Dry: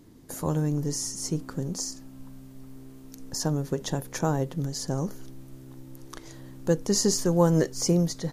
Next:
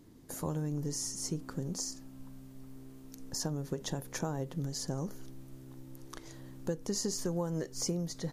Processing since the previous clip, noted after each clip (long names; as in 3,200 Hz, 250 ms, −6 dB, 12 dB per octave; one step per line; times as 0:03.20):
downward compressor 6 to 1, threshold −26 dBFS, peak gain reduction 11 dB
level −4.5 dB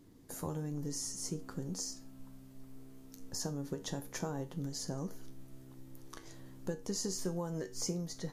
tuned comb filter 94 Hz, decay 0.28 s, harmonics all, mix 70%
level +3.5 dB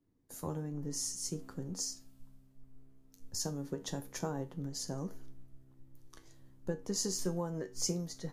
multiband upward and downward expander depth 70%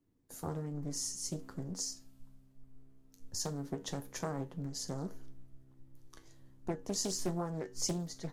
highs frequency-modulated by the lows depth 0.71 ms